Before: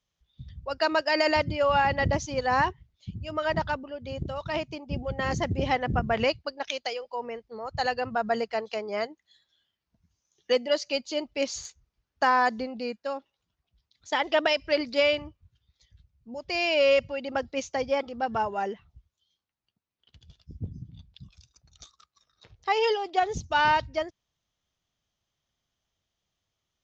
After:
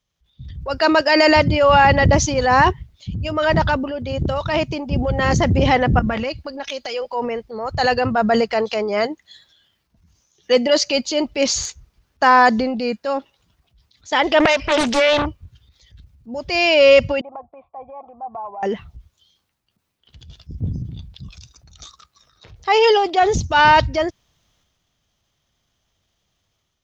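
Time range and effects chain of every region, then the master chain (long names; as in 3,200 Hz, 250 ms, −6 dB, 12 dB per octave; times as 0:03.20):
0:05.99–0:06.94: comb filter 3.6 ms, depth 48% + downward compressor 4 to 1, threshold −34 dBFS
0:14.40–0:15.26: parametric band 1,200 Hz +12 dB 2.8 octaves + downward compressor, threshold −22 dBFS + highs frequency-modulated by the lows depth 0.59 ms
0:17.21–0:18.63: downward compressor 2 to 1, threshold −30 dBFS + formant resonators in series a
whole clip: low-shelf EQ 190 Hz +3 dB; automatic gain control gain up to 7.5 dB; transient designer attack −4 dB, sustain +6 dB; level +3.5 dB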